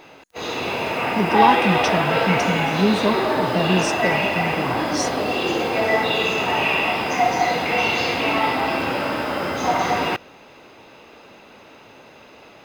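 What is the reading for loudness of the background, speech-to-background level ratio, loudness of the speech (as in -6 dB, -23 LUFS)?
-20.5 LUFS, -3.5 dB, -24.0 LUFS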